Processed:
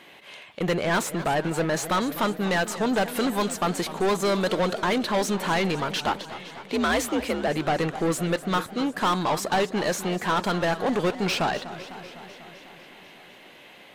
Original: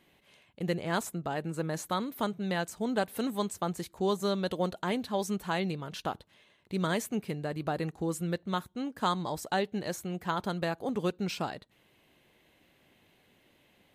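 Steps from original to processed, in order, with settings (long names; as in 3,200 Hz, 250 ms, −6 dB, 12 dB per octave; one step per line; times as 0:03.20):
mid-hump overdrive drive 26 dB, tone 3,400 Hz, clips at −15 dBFS
0:06.06–0:07.48: frequency shifter +58 Hz
feedback echo with a swinging delay time 250 ms, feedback 69%, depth 156 cents, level −14.5 dB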